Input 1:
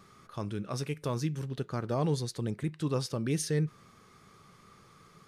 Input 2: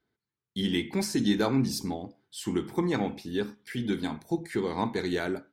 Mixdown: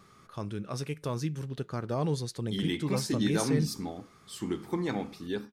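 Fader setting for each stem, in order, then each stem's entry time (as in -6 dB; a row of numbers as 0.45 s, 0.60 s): -0.5 dB, -4.0 dB; 0.00 s, 1.95 s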